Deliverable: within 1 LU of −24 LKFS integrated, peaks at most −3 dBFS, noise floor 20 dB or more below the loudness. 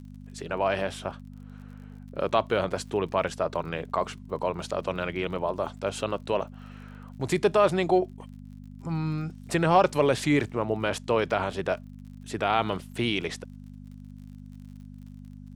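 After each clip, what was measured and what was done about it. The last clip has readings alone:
crackle rate 51 per second; mains hum 50 Hz; hum harmonics up to 250 Hz; level of the hum −41 dBFS; integrated loudness −27.5 LKFS; sample peak −8.5 dBFS; target loudness −24.0 LKFS
→ click removal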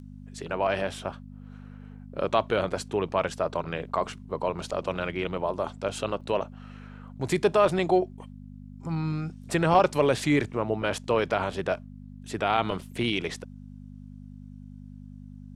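crackle rate 0.19 per second; mains hum 50 Hz; hum harmonics up to 250 Hz; level of the hum −41 dBFS
→ hum removal 50 Hz, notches 5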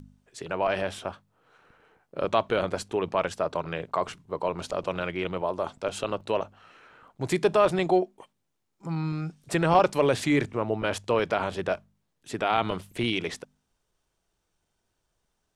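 mains hum none found; integrated loudness −27.5 LKFS; sample peak −8.5 dBFS; target loudness −24.0 LKFS
→ level +3.5 dB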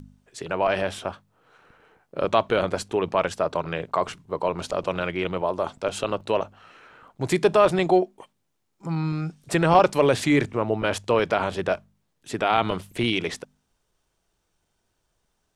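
integrated loudness −24.0 LKFS; sample peak −5.0 dBFS; background noise floor −74 dBFS

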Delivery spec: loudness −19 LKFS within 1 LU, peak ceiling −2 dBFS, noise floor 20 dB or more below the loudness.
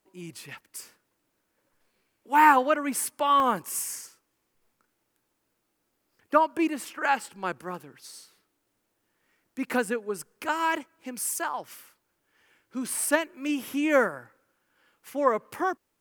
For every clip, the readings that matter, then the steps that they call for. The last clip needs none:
number of dropouts 1; longest dropout 1.1 ms; integrated loudness −26.5 LKFS; sample peak −6.0 dBFS; target loudness −19.0 LKFS
→ repair the gap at 0:03.40, 1.1 ms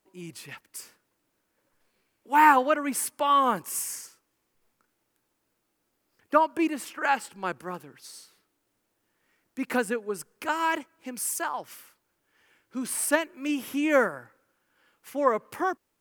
number of dropouts 0; integrated loudness −26.5 LKFS; sample peak −6.0 dBFS; target loudness −19.0 LKFS
→ level +7.5 dB
brickwall limiter −2 dBFS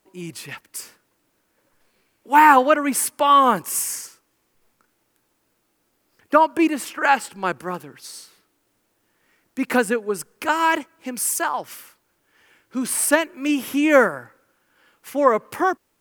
integrated loudness −19.5 LKFS; sample peak −2.0 dBFS; background noise floor −69 dBFS

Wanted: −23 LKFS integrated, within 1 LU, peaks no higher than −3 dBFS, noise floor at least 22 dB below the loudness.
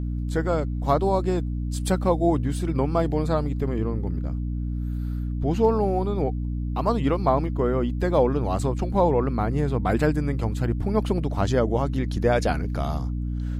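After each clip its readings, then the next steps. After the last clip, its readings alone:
mains hum 60 Hz; hum harmonics up to 300 Hz; level of the hum −25 dBFS; integrated loudness −24.5 LKFS; sample peak −7.5 dBFS; target loudness −23.0 LKFS
→ hum removal 60 Hz, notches 5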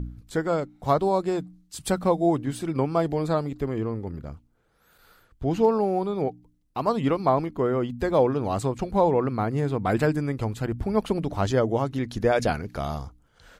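mains hum none found; integrated loudness −25.5 LKFS; sample peak −9.0 dBFS; target loudness −23.0 LKFS
→ level +2.5 dB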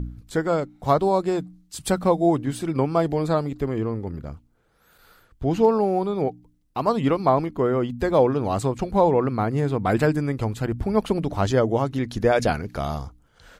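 integrated loudness −23.0 LKFS; sample peak −6.5 dBFS; background noise floor −61 dBFS

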